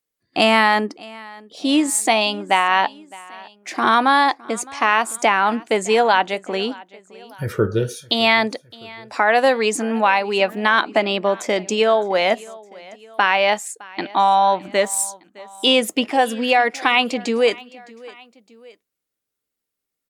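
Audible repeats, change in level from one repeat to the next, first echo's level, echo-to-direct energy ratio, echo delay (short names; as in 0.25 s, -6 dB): 2, -5.5 dB, -22.0 dB, -21.0 dB, 0.612 s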